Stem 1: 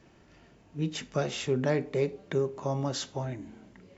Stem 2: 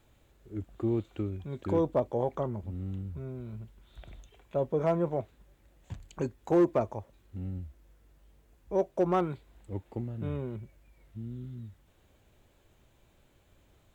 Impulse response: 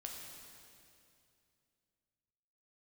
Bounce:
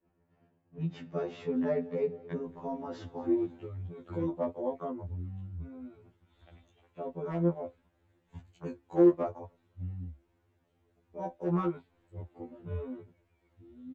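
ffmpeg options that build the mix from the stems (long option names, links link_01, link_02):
-filter_complex "[0:a]agate=range=-33dB:threshold=-49dB:ratio=3:detection=peak,lowpass=frequency=1200:poles=1,volume=0.5dB,asplit=2[link_01][link_02];[link_02]volume=-22dB[link_03];[1:a]flanger=delay=7.1:depth=8.5:regen=45:speed=0.85:shape=sinusoidal,adelay=2450,volume=2.5dB[link_04];[link_03]aecho=0:1:223|446|669|892|1115|1338:1|0.41|0.168|0.0689|0.0283|0.0116[link_05];[link_01][link_04][link_05]amix=inputs=3:normalize=0,lowpass=frequency=2100:poles=1,afftfilt=real='re*2*eq(mod(b,4),0)':imag='im*2*eq(mod(b,4),0)':win_size=2048:overlap=0.75"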